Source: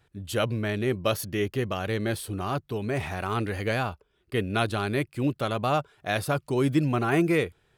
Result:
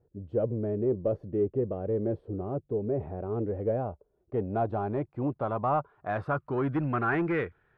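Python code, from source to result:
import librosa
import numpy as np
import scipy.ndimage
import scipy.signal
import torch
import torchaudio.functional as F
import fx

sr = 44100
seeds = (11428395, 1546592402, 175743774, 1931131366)

y = 10.0 ** (-18.5 / 20.0) * np.tanh(x / 10.0 ** (-18.5 / 20.0))
y = fx.filter_sweep_lowpass(y, sr, from_hz=490.0, to_hz=1600.0, start_s=3.35, end_s=7.13, q=2.3)
y = F.gain(torch.from_numpy(y), -3.5).numpy()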